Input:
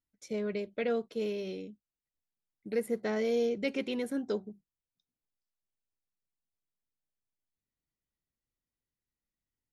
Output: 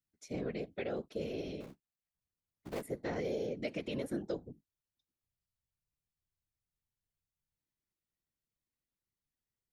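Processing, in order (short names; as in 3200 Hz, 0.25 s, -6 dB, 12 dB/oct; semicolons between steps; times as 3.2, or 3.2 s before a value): 1.6–2.84 cycle switcher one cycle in 3, muted; compressor, threshold -31 dBFS, peak gain reduction 6 dB; whisperiser; gain -3 dB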